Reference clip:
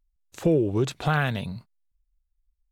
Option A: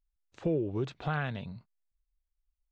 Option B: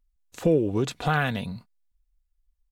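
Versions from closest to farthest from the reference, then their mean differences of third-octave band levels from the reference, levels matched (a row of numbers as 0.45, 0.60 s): B, A; 1.0, 2.5 dB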